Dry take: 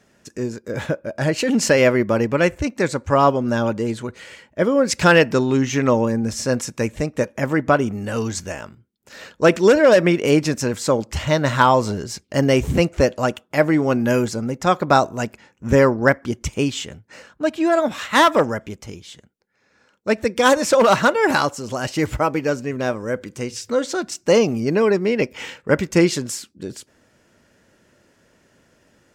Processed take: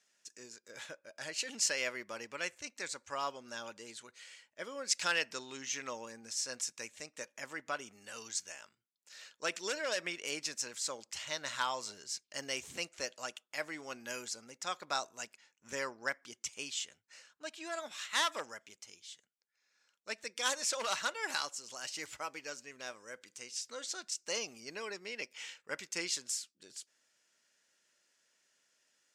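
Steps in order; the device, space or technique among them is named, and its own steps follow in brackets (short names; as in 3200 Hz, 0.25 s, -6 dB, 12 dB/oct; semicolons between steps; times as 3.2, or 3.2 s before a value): piezo pickup straight into a mixer (LPF 7100 Hz 12 dB/oct; differentiator); gain -4 dB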